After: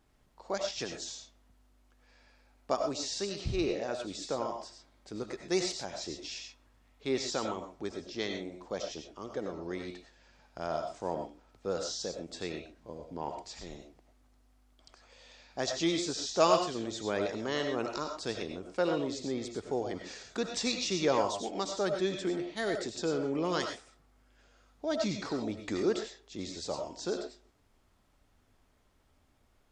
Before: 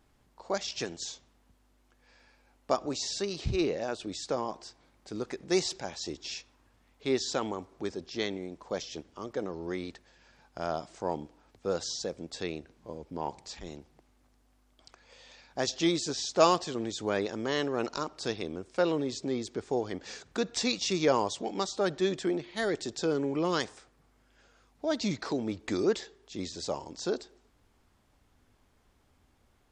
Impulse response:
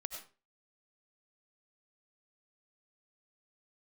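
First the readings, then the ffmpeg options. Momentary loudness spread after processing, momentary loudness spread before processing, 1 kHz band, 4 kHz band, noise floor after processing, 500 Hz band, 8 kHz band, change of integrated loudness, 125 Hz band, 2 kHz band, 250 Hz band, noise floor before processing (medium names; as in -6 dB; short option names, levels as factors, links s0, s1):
12 LU, 11 LU, -1.5 dB, -1.5 dB, -68 dBFS, -1.5 dB, -1.5 dB, -2.0 dB, -2.5 dB, -2.0 dB, -2.5 dB, -67 dBFS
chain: -filter_complex "[1:a]atrim=start_sample=2205,atrim=end_sample=6174[s0];[0:a][s0]afir=irnorm=-1:irlink=0"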